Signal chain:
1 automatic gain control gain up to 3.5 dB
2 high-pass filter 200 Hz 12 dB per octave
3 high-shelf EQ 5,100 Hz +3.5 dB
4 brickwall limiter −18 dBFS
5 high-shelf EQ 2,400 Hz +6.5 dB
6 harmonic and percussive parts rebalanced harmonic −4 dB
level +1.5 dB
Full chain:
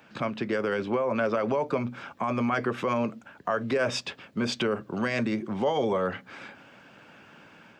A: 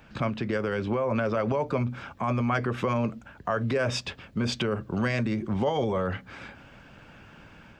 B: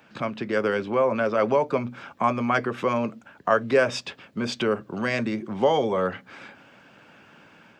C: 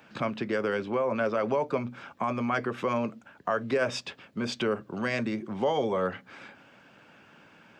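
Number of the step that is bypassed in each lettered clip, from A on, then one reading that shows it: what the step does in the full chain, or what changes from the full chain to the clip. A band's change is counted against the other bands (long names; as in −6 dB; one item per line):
2, 125 Hz band +7.5 dB
4, change in crest factor +5.0 dB
1, change in crest factor +1.5 dB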